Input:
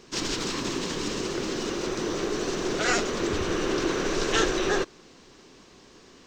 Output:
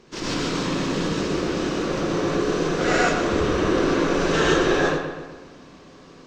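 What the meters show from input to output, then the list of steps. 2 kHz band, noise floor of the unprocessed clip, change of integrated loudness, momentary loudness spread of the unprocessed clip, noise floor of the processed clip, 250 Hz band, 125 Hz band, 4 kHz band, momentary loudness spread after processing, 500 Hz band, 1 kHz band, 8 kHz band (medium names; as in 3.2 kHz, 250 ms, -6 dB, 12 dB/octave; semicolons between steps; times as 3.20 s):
+5.0 dB, -53 dBFS, +5.0 dB, 6 LU, -47 dBFS, +6.5 dB, +9.0 dB, +1.5 dB, 7 LU, +6.0 dB, +6.5 dB, -1.5 dB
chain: treble shelf 3.7 kHz -10 dB; on a send: filtered feedback delay 125 ms, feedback 54%, low-pass 3.8 kHz, level -7 dB; on the sum: gated-style reverb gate 160 ms rising, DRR -5 dB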